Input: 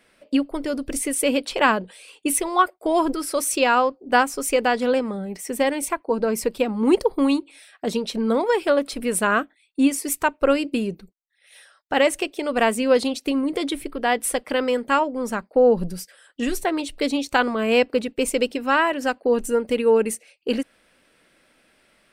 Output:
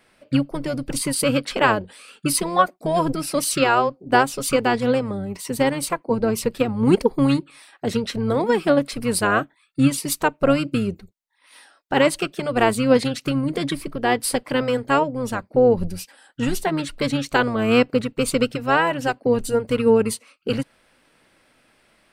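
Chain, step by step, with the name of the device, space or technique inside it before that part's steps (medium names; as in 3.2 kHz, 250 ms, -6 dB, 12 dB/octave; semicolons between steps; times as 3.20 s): octave pedal (harmony voices -12 st -6 dB)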